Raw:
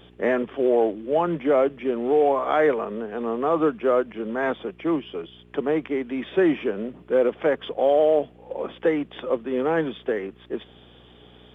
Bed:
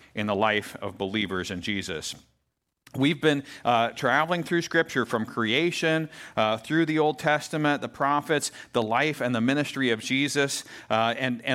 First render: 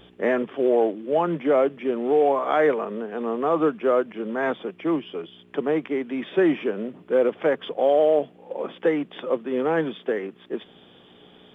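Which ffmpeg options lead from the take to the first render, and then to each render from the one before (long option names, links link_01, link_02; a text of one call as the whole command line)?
ffmpeg -i in.wav -af "bandreject=frequency=60:width_type=h:width=4,bandreject=frequency=120:width_type=h:width=4" out.wav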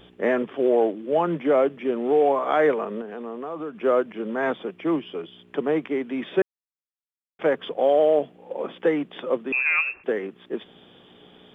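ffmpeg -i in.wav -filter_complex "[0:a]asettb=1/sr,asplit=3[link_01][link_02][link_03];[link_01]atrim=end=3.014[link_04];[link_02]atrim=start=3.01:end=3.82,asetpts=PTS-STARTPTS,afade=type=in:duration=0.004:curve=qsin,afade=type=out:start_time=0.806:duration=0.004:curve=qsin,acompressor=threshold=-32dB:ratio=3:attack=3.2:release=140:knee=1:detection=peak[link_05];[link_03]atrim=start=3.816[link_06];[link_04][link_05]acrossfade=duration=0.004:curve1=hsin:curve2=qsin[link_07];[link_07][link_06]acrossfade=duration=0.004:curve1=qsin:curve2=hsin,asettb=1/sr,asplit=3[link_08][link_09][link_10];[link_08]atrim=end=9.524[link_11];[link_09]atrim=start=9.52:end=10.04,asetpts=PTS-STARTPTS,afade=type=in:duration=0.004:curve=qsin,afade=type=out:start_time=0.516:duration=0.004:curve=qsin,lowpass=frequency=2500:width_type=q:width=0.5098,lowpass=frequency=2500:width_type=q:width=0.6013,lowpass=frequency=2500:width_type=q:width=0.9,lowpass=frequency=2500:width_type=q:width=2.563,afreqshift=-2900[link_12];[link_10]atrim=start=10.036[link_13];[link_11][link_12]acrossfade=duration=0.004:curve1=hsin:curve2=qsin[link_14];[link_14][link_13]acrossfade=duration=0.004:curve1=qsin:curve2=hsin,asplit=3[link_15][link_16][link_17];[link_15]atrim=end=6.42,asetpts=PTS-STARTPTS,afade=type=out:start_time=6.416:duration=0.004:curve=hsin[link_18];[link_16]atrim=start=6.42:end=7.39,asetpts=PTS-STARTPTS,volume=0[link_19];[link_17]atrim=start=7.39,asetpts=PTS-STARTPTS,afade=type=in:duration=0.004:curve=hsin[link_20];[link_18][link_19][link_20]concat=n=3:v=0:a=1" out.wav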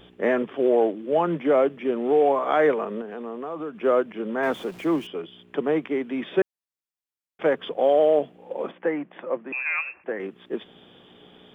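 ffmpeg -i in.wav -filter_complex "[0:a]asettb=1/sr,asplit=3[link_01][link_02][link_03];[link_01]atrim=end=4.434[link_04];[link_02]atrim=start=4.43:end=5.07,asetpts=PTS-STARTPTS,afade=type=in:duration=0.004:curve=qsin,afade=type=out:start_time=0.636:duration=0.004:curve=qsin,aeval=exprs='val(0)+0.5*0.00944*sgn(val(0))':channel_layout=same[link_05];[link_03]atrim=start=5.066[link_06];[link_04][link_05]acrossfade=duration=0.004:curve1=hsin:curve2=qsin[link_07];[link_07][link_06]acrossfade=duration=0.004:curve1=qsin:curve2=hsin,asettb=1/sr,asplit=3[link_08][link_09][link_10];[link_08]atrim=end=8.714[link_11];[link_09]atrim=start=8.71:end=10.2,asetpts=PTS-STARTPTS,afade=type=in:duration=0.004:curve=qsin,afade=type=out:start_time=1.486:duration=0.004:curve=qsin,highpass=110,equalizer=frequency=110:width_type=q:width=4:gain=-8,equalizer=frequency=160:width_type=q:width=4:gain=-4,equalizer=frequency=250:width_type=q:width=4:gain=-7,equalizer=frequency=420:width_type=q:width=4:gain=-9,equalizer=frequency=1300:width_type=q:width=4:gain=-4,lowpass=frequency=2200:width=0.5412,lowpass=frequency=2200:width=1.3066[link_12];[link_10]atrim=start=10.196[link_13];[link_11][link_12]acrossfade=duration=0.004:curve1=hsin:curve2=qsin[link_14];[link_14][link_13]acrossfade=duration=0.004:curve1=qsin:curve2=hsin" out.wav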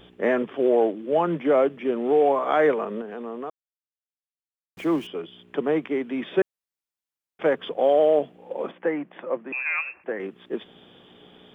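ffmpeg -i in.wav -filter_complex "[0:a]asplit=3[link_01][link_02][link_03];[link_01]atrim=end=3.5,asetpts=PTS-STARTPTS,afade=type=out:start_time=3.496:duration=0.004:curve=hsin[link_04];[link_02]atrim=start=3.5:end=4.77,asetpts=PTS-STARTPTS,volume=0[link_05];[link_03]atrim=start=4.77,asetpts=PTS-STARTPTS,afade=type=in:duration=0.004:curve=hsin[link_06];[link_04][link_05][link_06]concat=n=3:v=0:a=1" out.wav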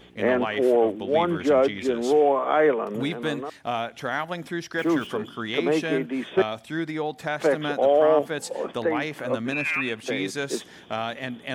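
ffmpeg -i in.wav -i bed.wav -filter_complex "[1:a]volume=-5.5dB[link_01];[0:a][link_01]amix=inputs=2:normalize=0" out.wav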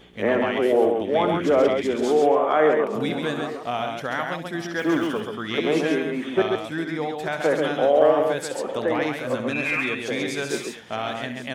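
ffmpeg -i in.wav -af "aecho=1:1:65|135|864:0.299|0.596|0.168" out.wav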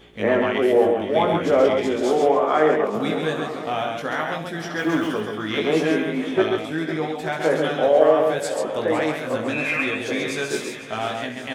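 ffmpeg -i in.wav -filter_complex "[0:a]asplit=2[link_01][link_02];[link_02]adelay=19,volume=-4.5dB[link_03];[link_01][link_03]amix=inputs=2:normalize=0,aecho=1:1:507|1014|1521|2028|2535:0.2|0.102|0.0519|0.0265|0.0135" out.wav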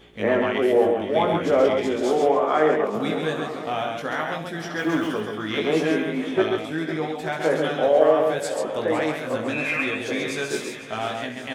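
ffmpeg -i in.wav -af "volume=-1.5dB" out.wav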